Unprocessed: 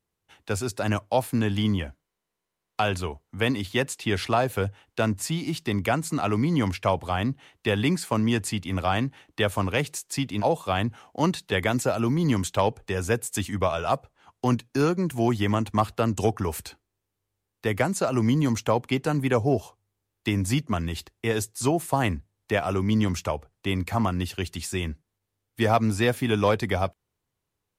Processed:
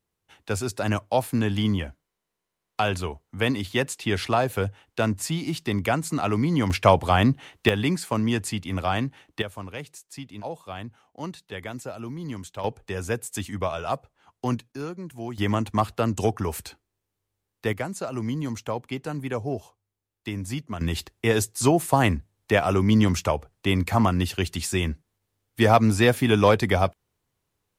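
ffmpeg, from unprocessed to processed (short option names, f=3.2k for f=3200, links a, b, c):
-af "asetnsamples=n=441:p=0,asendcmd='6.7 volume volume 7dB;7.69 volume volume -0.5dB;9.42 volume volume -11dB;12.64 volume volume -3dB;14.72 volume volume -11dB;15.38 volume volume 0dB;17.73 volume volume -6.5dB;20.81 volume volume 4dB',volume=0.5dB"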